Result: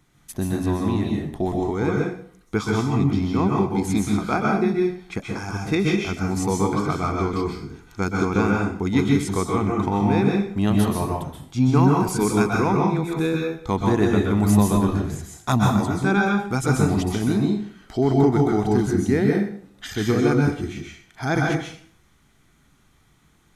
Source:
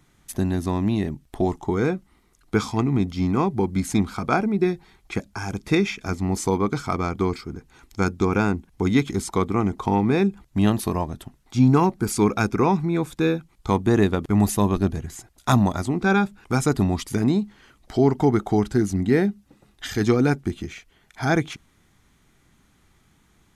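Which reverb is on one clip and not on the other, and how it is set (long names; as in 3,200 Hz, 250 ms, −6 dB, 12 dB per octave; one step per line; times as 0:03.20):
dense smooth reverb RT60 0.54 s, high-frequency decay 0.9×, pre-delay 115 ms, DRR −1 dB
level −2.5 dB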